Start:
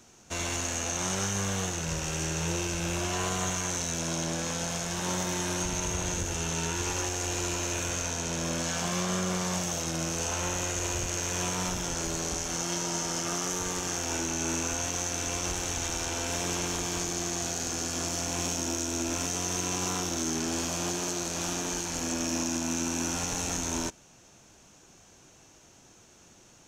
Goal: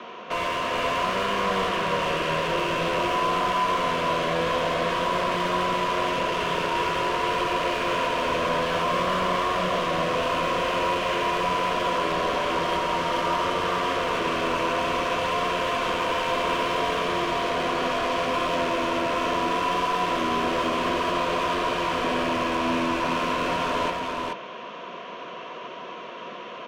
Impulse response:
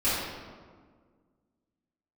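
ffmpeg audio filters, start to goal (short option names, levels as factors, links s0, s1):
-filter_complex "[0:a]highpass=f=170:w=0.5412,highpass=f=170:w=1.3066,equalizer=f=300:t=q:w=4:g=-6,equalizer=f=500:t=q:w=4:g=5,equalizer=f=1000:t=q:w=4:g=10,equalizer=f=1500:t=q:w=4:g=-4,equalizer=f=3100:t=q:w=4:g=5,lowpass=f=3400:w=0.5412,lowpass=f=3400:w=1.3066,asplit=2[s0][s1];[s1]highpass=f=720:p=1,volume=35.5,asoftclip=type=tanh:threshold=0.133[s2];[s0][s2]amix=inputs=2:normalize=0,lowpass=f=1400:p=1,volume=0.501,asuperstop=centerf=840:order=12:qfactor=4.9,aecho=1:1:429:0.708"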